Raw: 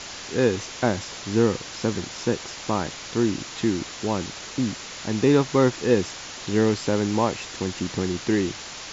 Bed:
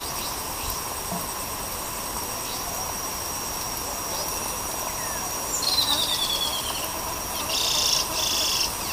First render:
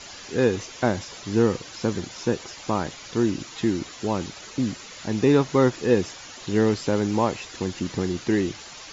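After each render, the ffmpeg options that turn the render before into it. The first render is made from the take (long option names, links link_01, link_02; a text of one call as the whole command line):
ffmpeg -i in.wav -af "afftdn=noise_reduction=9:noise_floor=-38" out.wav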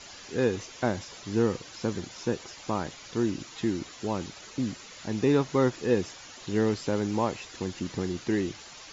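ffmpeg -i in.wav -af "volume=-5dB" out.wav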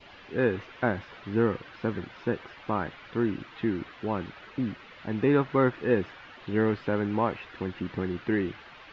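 ffmpeg -i in.wav -af "lowpass=frequency=3100:width=0.5412,lowpass=frequency=3100:width=1.3066,adynamicequalizer=threshold=0.00355:dfrequency=1500:dqfactor=1.8:tfrequency=1500:tqfactor=1.8:attack=5:release=100:ratio=0.375:range=3:mode=boostabove:tftype=bell" out.wav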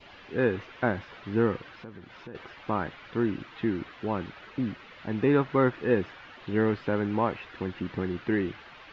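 ffmpeg -i in.wav -filter_complex "[0:a]asettb=1/sr,asplit=3[link_01][link_02][link_03];[link_01]atrim=end=1.714[link_04];[link_02]atrim=start=1.71:end=2.35,asetpts=PTS-STARTPTS,afade=type=in:duration=0.004:curve=qsin,afade=type=out:start_time=0.636:duration=0.004:curve=qsin,acompressor=threshold=-44dB:ratio=3:attack=3.2:release=140:knee=1:detection=peak[link_05];[link_03]atrim=start=2.346[link_06];[link_04][link_05]acrossfade=duration=0.004:curve1=hsin:curve2=qsin[link_07];[link_07][link_06]acrossfade=duration=0.004:curve1=qsin:curve2=hsin" out.wav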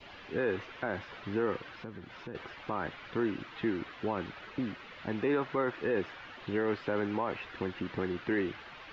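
ffmpeg -i in.wav -filter_complex "[0:a]acrossover=split=300|1400[link_01][link_02][link_03];[link_01]acompressor=threshold=-38dB:ratio=6[link_04];[link_04][link_02][link_03]amix=inputs=3:normalize=0,alimiter=limit=-21.5dB:level=0:latency=1:release=12" out.wav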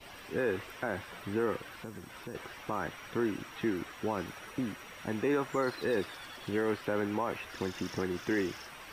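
ffmpeg -i in.wav -i bed.wav -filter_complex "[1:a]volume=-27.5dB[link_01];[0:a][link_01]amix=inputs=2:normalize=0" out.wav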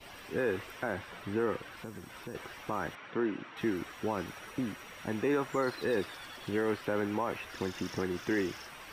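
ffmpeg -i in.wav -filter_complex "[0:a]asettb=1/sr,asplit=3[link_01][link_02][link_03];[link_01]atrim=end=0.934[link_04];[link_02]atrim=start=0.93:end=1.77,asetpts=PTS-STARTPTS,afade=type=in:duration=0.004:curve=qsin,afade=type=out:start_time=0.836:duration=0.004:curve=qsin,highshelf=frequency=7300:gain=-6[link_05];[link_03]atrim=start=1.766[link_06];[link_04][link_05]acrossfade=duration=0.004:curve1=hsin:curve2=qsin[link_07];[link_07][link_06]acrossfade=duration=0.004:curve1=qsin:curve2=hsin,asettb=1/sr,asplit=3[link_08][link_09][link_10];[link_08]atrim=end=2.954[link_11];[link_09]atrim=start=2.95:end=3.57,asetpts=PTS-STARTPTS,afade=type=in:duration=0.004:curve=qsin,afade=type=out:start_time=0.616:duration=0.004:curve=qsin,highpass=160,lowpass=3000[link_12];[link_10]atrim=start=3.566[link_13];[link_11][link_12]acrossfade=duration=0.004:curve1=hsin:curve2=qsin[link_14];[link_14][link_13]acrossfade=duration=0.004:curve1=qsin:curve2=hsin" out.wav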